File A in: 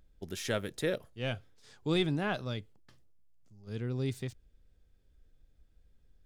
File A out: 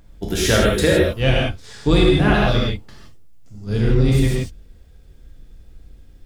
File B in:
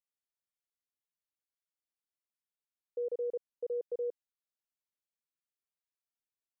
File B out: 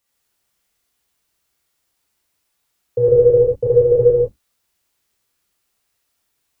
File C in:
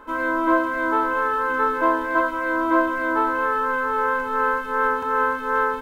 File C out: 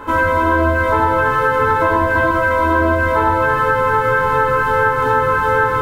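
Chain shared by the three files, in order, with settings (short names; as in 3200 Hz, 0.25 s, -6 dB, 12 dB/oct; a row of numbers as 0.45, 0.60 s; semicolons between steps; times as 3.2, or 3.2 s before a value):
octaver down 2 oct, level -2 dB; non-linear reverb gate 0.19 s flat, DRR -4.5 dB; compressor 5:1, threshold -24 dBFS; normalise peaks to -3 dBFS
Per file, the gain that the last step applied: +13.5, +18.0, +11.5 dB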